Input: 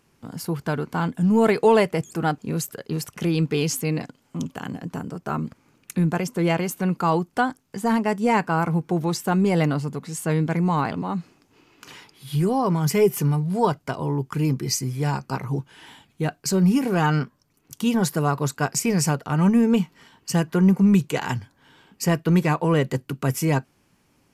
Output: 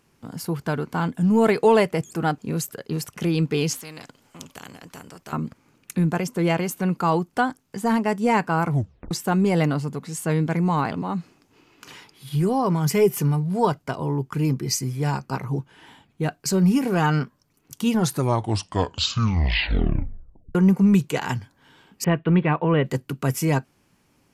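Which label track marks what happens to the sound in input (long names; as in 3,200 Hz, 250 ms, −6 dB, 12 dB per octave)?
3.730000	5.330000	every bin compressed towards the loudest bin 2 to 1
8.690000	8.690000	tape stop 0.42 s
12.290000	16.400000	one half of a high-frequency compander decoder only
17.860000	17.860000	tape stop 2.69 s
22.040000	22.860000	Butterworth low-pass 3,400 Hz 48 dB per octave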